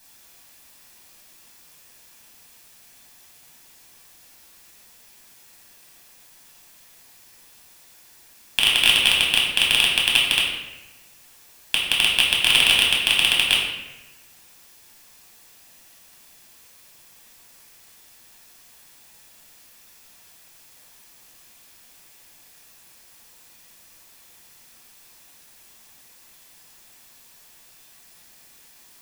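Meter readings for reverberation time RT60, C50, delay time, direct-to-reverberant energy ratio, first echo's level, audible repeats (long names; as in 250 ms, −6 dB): 1.0 s, 2.0 dB, no echo audible, −4.0 dB, no echo audible, no echo audible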